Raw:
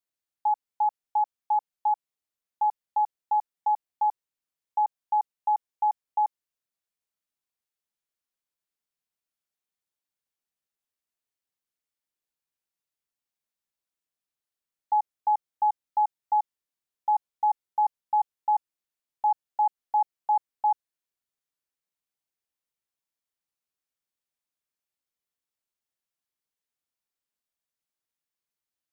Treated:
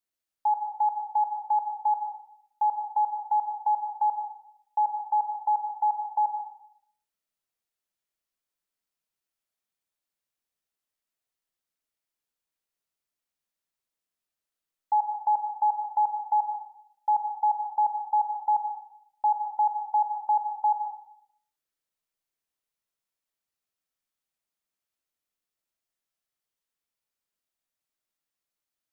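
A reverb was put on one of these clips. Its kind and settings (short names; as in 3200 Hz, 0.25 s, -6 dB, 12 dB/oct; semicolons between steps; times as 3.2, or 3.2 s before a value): digital reverb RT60 0.67 s, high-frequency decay 0.5×, pre-delay 70 ms, DRR 3.5 dB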